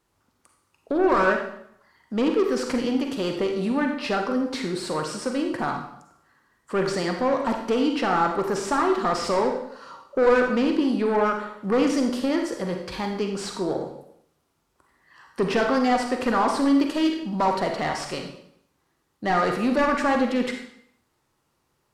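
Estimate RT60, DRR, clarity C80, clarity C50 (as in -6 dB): 0.70 s, 3.0 dB, 8.0 dB, 5.0 dB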